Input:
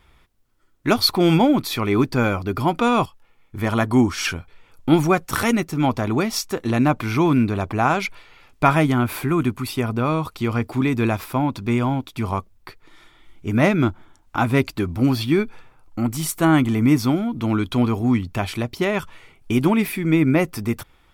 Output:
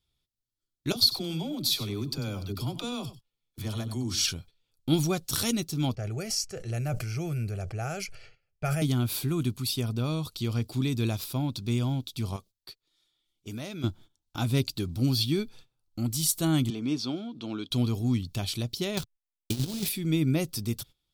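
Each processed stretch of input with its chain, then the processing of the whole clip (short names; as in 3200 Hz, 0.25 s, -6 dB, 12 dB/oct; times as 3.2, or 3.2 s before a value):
0.92–4.28 compressor, threshold -20 dBFS + dispersion lows, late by 43 ms, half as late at 380 Hz + echo 96 ms -14 dB
5.95–8.82 low-pass opened by the level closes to 2800 Hz, open at -14.5 dBFS + fixed phaser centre 1000 Hz, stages 6 + sustainer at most 60 dB/s
12.36–13.84 low shelf 220 Hz -12 dB + compressor 3:1, threshold -26 dBFS
16.7–17.71 BPF 280–4000 Hz + notch 2000 Hz, Q 7.2
18.97–19.89 negative-ratio compressor -21 dBFS, ratio -0.5 + companded quantiser 4-bit + backlash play -25 dBFS
whole clip: high shelf 2700 Hz +11 dB; gate -38 dBFS, range -16 dB; graphic EQ 125/1000/2000/4000 Hz +7/-7/-11/+9 dB; gain -10.5 dB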